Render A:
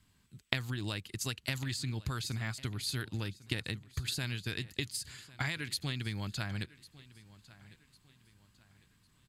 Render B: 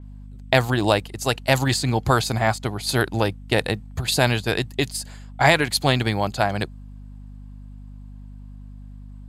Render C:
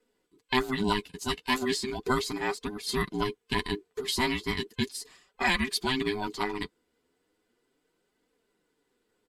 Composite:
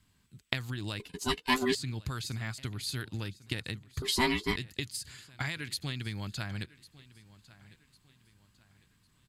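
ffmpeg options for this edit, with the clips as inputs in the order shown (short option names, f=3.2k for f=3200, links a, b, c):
-filter_complex "[2:a]asplit=2[a][b];[0:a]asplit=3[c][d][e];[c]atrim=end=1.002[f];[a]atrim=start=0.998:end=1.752[g];[d]atrim=start=1.748:end=4.022[h];[b]atrim=start=4.018:end=4.562[i];[e]atrim=start=4.558[j];[f][g]acrossfade=d=0.004:c1=hsin:c2=hsin[k];[k][h]acrossfade=d=0.004:c1=hsin:c2=hsin[l];[l][i]acrossfade=d=0.004:c1=hsin:c2=hsin[m];[m][j]acrossfade=d=0.004:c1=hsin:c2=hsin"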